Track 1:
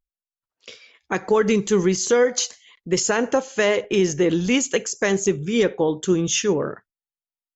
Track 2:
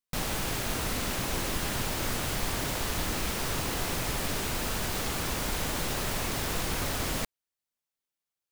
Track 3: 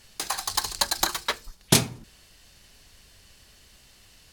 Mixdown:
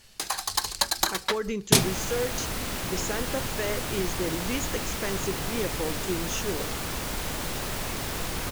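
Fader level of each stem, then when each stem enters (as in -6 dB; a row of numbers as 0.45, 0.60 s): -12.0, -0.5, -0.5 dB; 0.00, 1.65, 0.00 s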